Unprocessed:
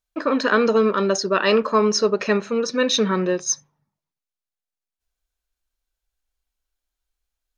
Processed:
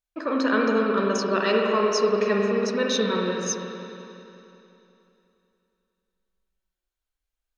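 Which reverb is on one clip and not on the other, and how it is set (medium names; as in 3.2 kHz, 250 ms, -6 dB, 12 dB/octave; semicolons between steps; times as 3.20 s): spring tank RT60 3 s, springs 45/60 ms, chirp 55 ms, DRR -1 dB; trim -6.5 dB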